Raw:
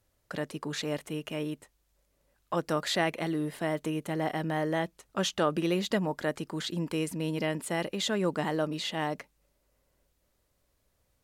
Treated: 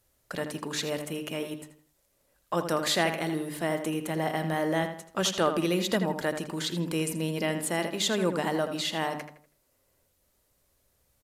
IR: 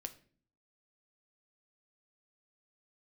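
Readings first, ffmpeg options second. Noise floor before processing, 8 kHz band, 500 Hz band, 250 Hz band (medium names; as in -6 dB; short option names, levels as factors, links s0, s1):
-74 dBFS, +6.5 dB, +2.0 dB, +1.0 dB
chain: -filter_complex "[0:a]bandreject=f=50:t=h:w=6,bandreject=f=100:t=h:w=6,bandreject=f=150:t=h:w=6,bandreject=f=200:t=h:w=6,bandreject=f=250:t=h:w=6,bandreject=f=300:t=h:w=6,asplit=2[s0][s1];[s1]adelay=81,lowpass=f=3600:p=1,volume=0.398,asplit=2[s2][s3];[s3]adelay=81,lowpass=f=3600:p=1,volume=0.38,asplit=2[s4][s5];[s5]adelay=81,lowpass=f=3600:p=1,volume=0.38,asplit=2[s6][s7];[s7]adelay=81,lowpass=f=3600:p=1,volume=0.38[s8];[s2][s4][s6][s8]amix=inputs=4:normalize=0[s9];[s0][s9]amix=inputs=2:normalize=0,crystalizer=i=1:c=0,volume=1.19" -ar 32000 -c:a aac -b:a 96k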